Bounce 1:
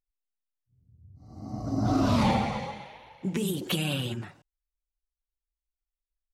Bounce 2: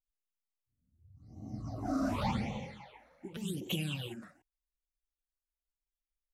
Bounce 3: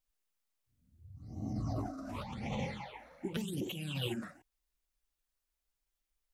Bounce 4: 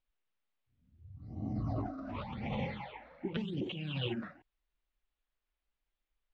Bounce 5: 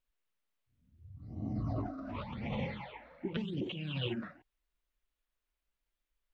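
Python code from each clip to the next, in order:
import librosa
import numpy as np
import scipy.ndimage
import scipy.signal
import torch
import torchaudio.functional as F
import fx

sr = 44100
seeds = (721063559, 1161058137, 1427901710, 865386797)

y1 = fx.phaser_stages(x, sr, stages=8, low_hz=110.0, high_hz=1500.0, hz=0.88, feedback_pct=25)
y1 = y1 * 10.0 ** (-6.0 / 20.0)
y2 = fx.over_compress(y1, sr, threshold_db=-41.0, ratio=-1.0)
y2 = y2 * 10.0 ** (2.5 / 20.0)
y3 = scipy.signal.sosfilt(scipy.signal.butter(4, 3600.0, 'lowpass', fs=sr, output='sos'), y2)
y3 = y3 * 10.0 ** (1.0 / 20.0)
y4 = fx.notch(y3, sr, hz=790.0, q=12.0)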